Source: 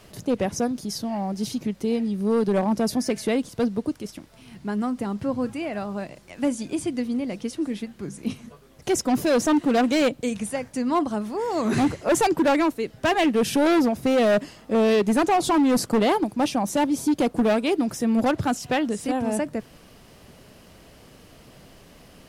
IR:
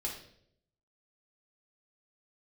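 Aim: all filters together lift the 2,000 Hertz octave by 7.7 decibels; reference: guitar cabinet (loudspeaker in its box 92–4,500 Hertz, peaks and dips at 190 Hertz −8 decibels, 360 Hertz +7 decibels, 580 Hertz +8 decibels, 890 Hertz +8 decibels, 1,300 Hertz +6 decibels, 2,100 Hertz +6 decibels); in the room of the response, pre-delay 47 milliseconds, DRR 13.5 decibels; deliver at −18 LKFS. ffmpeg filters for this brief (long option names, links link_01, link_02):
-filter_complex "[0:a]equalizer=frequency=2000:width_type=o:gain=4.5,asplit=2[link_01][link_02];[1:a]atrim=start_sample=2205,adelay=47[link_03];[link_02][link_03]afir=irnorm=-1:irlink=0,volume=-15dB[link_04];[link_01][link_04]amix=inputs=2:normalize=0,highpass=92,equalizer=frequency=190:width_type=q:width=4:gain=-8,equalizer=frequency=360:width_type=q:width=4:gain=7,equalizer=frequency=580:width_type=q:width=4:gain=8,equalizer=frequency=890:width_type=q:width=4:gain=8,equalizer=frequency=1300:width_type=q:width=4:gain=6,equalizer=frequency=2100:width_type=q:width=4:gain=6,lowpass=frequency=4500:width=0.5412,lowpass=frequency=4500:width=1.3066,volume=1dB"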